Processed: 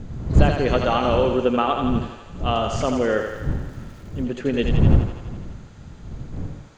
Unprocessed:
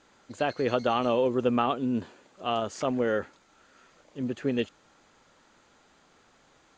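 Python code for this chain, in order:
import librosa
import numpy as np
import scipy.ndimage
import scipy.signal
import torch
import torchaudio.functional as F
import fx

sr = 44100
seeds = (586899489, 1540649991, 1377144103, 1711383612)

p1 = fx.dmg_wind(x, sr, seeds[0], corner_hz=130.0, level_db=-28.0)
p2 = fx.low_shelf(p1, sr, hz=130.0, db=-8.5, at=(0.73, 1.84))
p3 = p2 + fx.echo_thinned(p2, sr, ms=83, feedback_pct=69, hz=400.0, wet_db=-5, dry=0)
p4 = fx.sample_gate(p3, sr, floor_db=-53.0, at=(3.16, 4.22))
y = p4 * librosa.db_to_amplitude(5.0)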